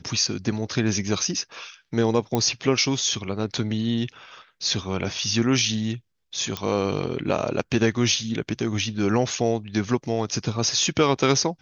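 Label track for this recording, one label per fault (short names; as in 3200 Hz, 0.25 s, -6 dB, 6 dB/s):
2.350000	2.350000	pop -10 dBFS
6.570000	6.570000	pop -12 dBFS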